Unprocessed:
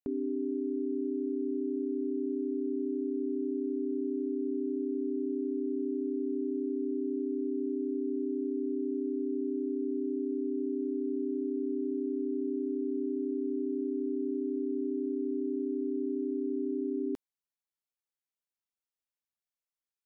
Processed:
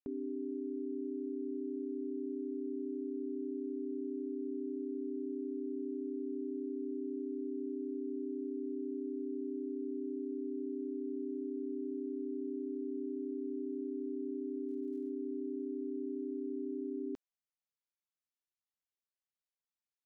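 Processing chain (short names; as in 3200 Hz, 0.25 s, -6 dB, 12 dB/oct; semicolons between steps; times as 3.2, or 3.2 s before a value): downsampling 16000 Hz; 14.67–15.08 crackle 140/s -> 400/s -57 dBFS; gain -6.5 dB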